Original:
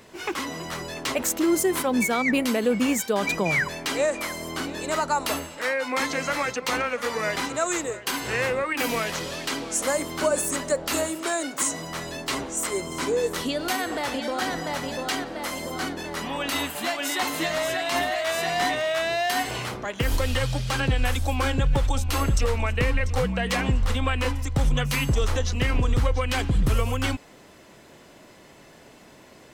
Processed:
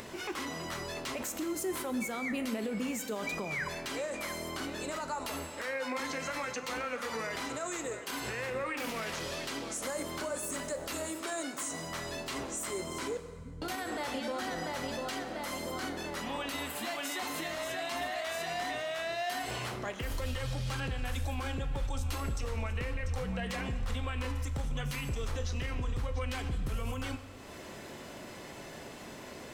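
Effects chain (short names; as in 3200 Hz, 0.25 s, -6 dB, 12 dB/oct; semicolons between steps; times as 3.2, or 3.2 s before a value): 13.17–13.62 inverse Chebyshev low-pass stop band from 860 Hz, stop band 80 dB; upward compressor, threshold -30 dBFS; limiter -22 dBFS, peak gain reduction 9.5 dB; reverb RT60 2.0 s, pre-delay 6 ms, DRR 8 dB; 8.64–9.2 Doppler distortion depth 0.16 ms; gain -6 dB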